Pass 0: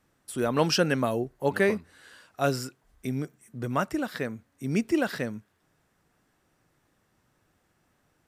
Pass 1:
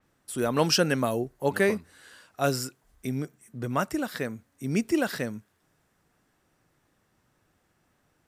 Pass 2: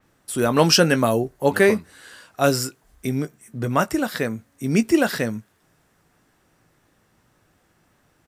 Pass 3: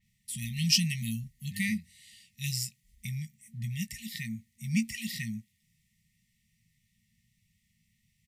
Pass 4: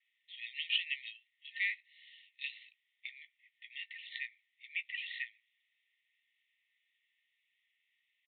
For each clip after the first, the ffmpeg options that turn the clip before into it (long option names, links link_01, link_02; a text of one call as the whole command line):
ffmpeg -i in.wav -af "adynamicequalizer=threshold=0.00501:dfrequency=5100:dqfactor=0.7:tfrequency=5100:tqfactor=0.7:attack=5:release=100:ratio=0.375:range=3:mode=boostabove:tftype=highshelf" out.wav
ffmpeg -i in.wav -filter_complex "[0:a]asplit=2[link_01][link_02];[link_02]adelay=18,volume=-12.5dB[link_03];[link_01][link_03]amix=inputs=2:normalize=0,volume=7dB" out.wav
ffmpeg -i in.wav -af "afftfilt=real='re*(1-between(b*sr/4096,230,1800))':imag='im*(1-between(b*sr/4096,230,1800))':win_size=4096:overlap=0.75,volume=-7dB" out.wav
ffmpeg -i in.wav -af "acontrast=72,asuperpass=centerf=2500:order=12:qfactor=0.64,aresample=8000,aresample=44100,volume=-6dB" out.wav